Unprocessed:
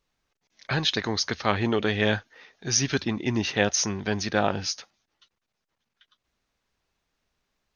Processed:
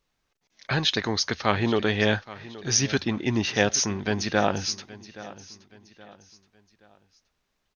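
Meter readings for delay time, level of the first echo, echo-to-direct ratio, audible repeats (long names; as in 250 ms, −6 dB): 823 ms, −18.0 dB, −17.5 dB, 3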